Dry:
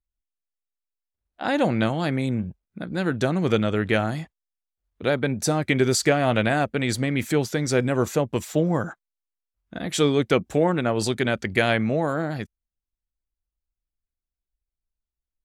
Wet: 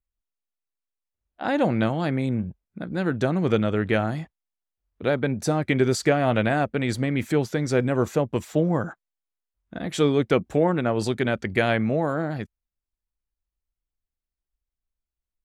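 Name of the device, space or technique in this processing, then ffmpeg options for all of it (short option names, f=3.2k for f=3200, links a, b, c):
behind a face mask: -af "highshelf=f=3k:g=-8"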